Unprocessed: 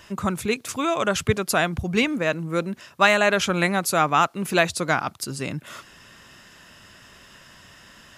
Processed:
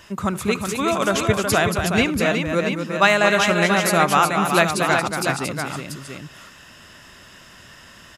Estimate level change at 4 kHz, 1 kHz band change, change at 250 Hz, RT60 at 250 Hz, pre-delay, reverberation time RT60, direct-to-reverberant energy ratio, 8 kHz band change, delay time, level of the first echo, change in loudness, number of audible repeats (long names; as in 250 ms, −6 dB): +3.5 dB, +3.5 dB, +3.5 dB, no reverb audible, no reverb audible, no reverb audible, no reverb audible, +3.5 dB, 74 ms, −20.0 dB, +3.5 dB, 4